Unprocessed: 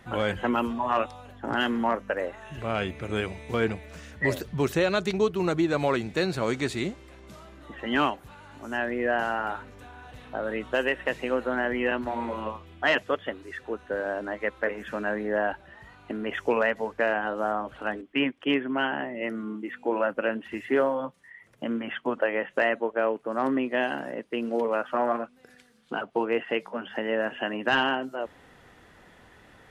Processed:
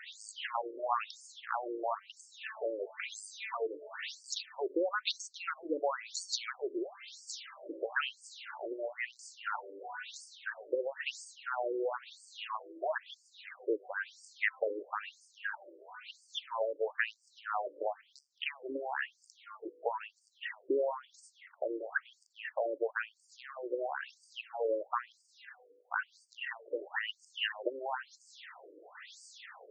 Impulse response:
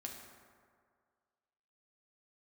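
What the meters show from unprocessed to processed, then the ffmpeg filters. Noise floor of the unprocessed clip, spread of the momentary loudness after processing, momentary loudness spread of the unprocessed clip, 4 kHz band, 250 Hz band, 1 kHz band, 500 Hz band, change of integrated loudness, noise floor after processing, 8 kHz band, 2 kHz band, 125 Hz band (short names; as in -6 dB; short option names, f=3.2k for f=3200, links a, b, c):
-55 dBFS, 16 LU, 11 LU, -6.0 dB, -17.0 dB, -9.0 dB, -10.0 dB, -10.0 dB, -70 dBFS, n/a, -9.0 dB, under -40 dB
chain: -af "acompressor=threshold=-33dB:ratio=6,crystalizer=i=4.5:c=0,afftfilt=real='re*between(b*sr/1024,400*pow(6500/400,0.5+0.5*sin(2*PI*1*pts/sr))/1.41,400*pow(6500/400,0.5+0.5*sin(2*PI*1*pts/sr))*1.41)':imag='im*between(b*sr/1024,400*pow(6500/400,0.5+0.5*sin(2*PI*1*pts/sr))/1.41,400*pow(6500/400,0.5+0.5*sin(2*PI*1*pts/sr))*1.41)':win_size=1024:overlap=0.75,volume=5.5dB"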